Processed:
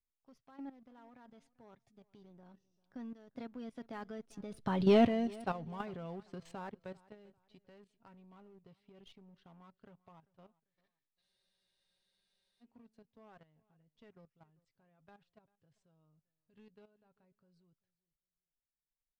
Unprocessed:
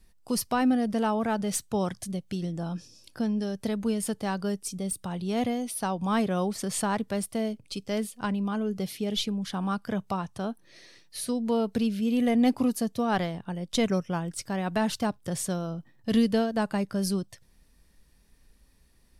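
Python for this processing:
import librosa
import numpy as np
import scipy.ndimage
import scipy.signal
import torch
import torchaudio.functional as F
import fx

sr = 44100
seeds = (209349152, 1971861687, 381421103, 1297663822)

p1 = fx.doppler_pass(x, sr, speed_mps=26, closest_m=2.4, pass_at_s=4.9)
p2 = scipy.signal.sosfilt(scipy.signal.butter(2, 3100.0, 'lowpass', fs=sr, output='sos'), p1)
p3 = p2 + 0.38 * np.pad(p2, (int(7.4 * sr / 1000.0), 0))[:len(p2)]
p4 = fx.level_steps(p3, sr, step_db=11)
p5 = fx.leveller(p4, sr, passes=1)
p6 = p5 + fx.echo_feedback(p5, sr, ms=394, feedback_pct=27, wet_db=-23, dry=0)
p7 = fx.spec_freeze(p6, sr, seeds[0], at_s=11.23, hold_s=1.38)
y = p7 * 10.0 ** (8.0 / 20.0)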